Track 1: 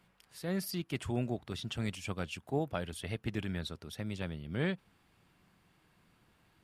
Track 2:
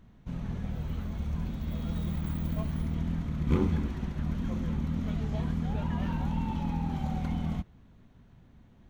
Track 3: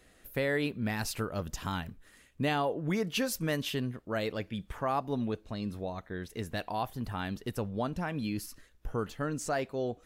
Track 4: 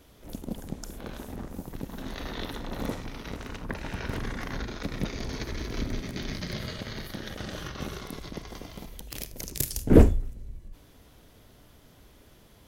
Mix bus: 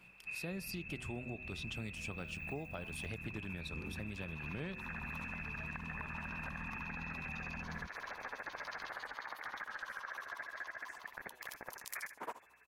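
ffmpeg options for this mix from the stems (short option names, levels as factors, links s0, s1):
-filter_complex "[0:a]bandreject=f=124.9:t=h:w=4,bandreject=f=249.8:t=h:w=4,bandreject=f=374.7:t=h:w=4,bandreject=f=499.6:t=h:w=4,bandreject=f=624.5:t=h:w=4,bandreject=f=749.4:t=h:w=4,bandreject=f=874.3:t=h:w=4,bandreject=f=999.2:t=h:w=4,bandreject=f=1124.1:t=h:w=4,bandreject=f=1249:t=h:w=4,bandreject=f=1373.9:t=h:w=4,bandreject=f=1498.8:t=h:w=4,bandreject=f=1623.7:t=h:w=4,bandreject=f=1748.6:t=h:w=4,bandreject=f=1873.5:t=h:w=4,bandreject=f=1998.4:t=h:w=4,bandreject=f=2123.3:t=h:w=4,volume=1.41,asplit=2[s0][s1];[1:a]volume=0.501,asplit=2[s2][s3];[s3]volume=0.531[s4];[2:a]highpass=1200,acompressor=threshold=0.00447:ratio=6,adelay=1500,volume=0.15[s5];[3:a]highpass=f=1000:t=q:w=4.9,tremolo=f=14:d=0.99,aeval=exprs='val(0)+0.000178*(sin(2*PI*60*n/s)+sin(2*PI*2*60*n/s)/2+sin(2*PI*3*60*n/s)/3+sin(2*PI*4*60*n/s)/4+sin(2*PI*5*60*n/s)/5)':c=same,adelay=2050,volume=1.33,asplit=2[s6][s7];[s7]volume=0.266[s8];[s1]apad=whole_len=649223[s9];[s6][s9]sidechaincompress=threshold=0.00562:ratio=8:attack=16:release=114[s10];[s2][s10]amix=inputs=2:normalize=0,lowpass=f=2300:t=q:w=0.5098,lowpass=f=2300:t=q:w=0.6013,lowpass=f=2300:t=q:w=0.9,lowpass=f=2300:t=q:w=2.563,afreqshift=-2700,acompressor=threshold=0.0141:ratio=6,volume=1[s11];[s4][s8]amix=inputs=2:normalize=0,aecho=0:1:251:1[s12];[s0][s5][s11][s12]amix=inputs=4:normalize=0,acompressor=threshold=0.01:ratio=6"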